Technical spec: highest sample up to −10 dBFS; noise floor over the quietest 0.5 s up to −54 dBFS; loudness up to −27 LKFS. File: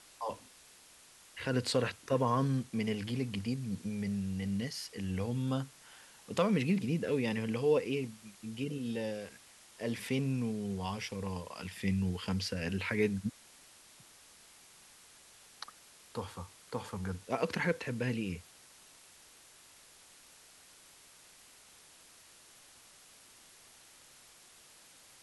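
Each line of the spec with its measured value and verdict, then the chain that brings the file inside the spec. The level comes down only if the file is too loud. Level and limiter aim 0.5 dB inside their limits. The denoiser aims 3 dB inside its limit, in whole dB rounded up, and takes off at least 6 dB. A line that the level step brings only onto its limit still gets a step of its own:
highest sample −16.0 dBFS: in spec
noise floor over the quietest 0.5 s −59 dBFS: in spec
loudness −35.0 LKFS: in spec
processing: no processing needed

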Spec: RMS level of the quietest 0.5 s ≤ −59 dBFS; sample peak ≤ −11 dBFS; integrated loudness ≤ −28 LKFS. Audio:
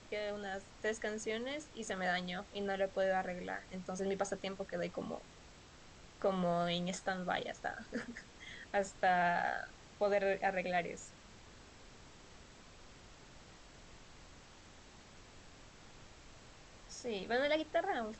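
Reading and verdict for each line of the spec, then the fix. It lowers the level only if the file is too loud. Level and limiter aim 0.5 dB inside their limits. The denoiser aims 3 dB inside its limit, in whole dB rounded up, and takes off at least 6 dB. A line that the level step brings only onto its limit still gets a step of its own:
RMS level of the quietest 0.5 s −58 dBFS: out of spec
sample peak −21.0 dBFS: in spec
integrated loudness −37.5 LKFS: in spec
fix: broadband denoise 6 dB, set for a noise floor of −58 dBFS

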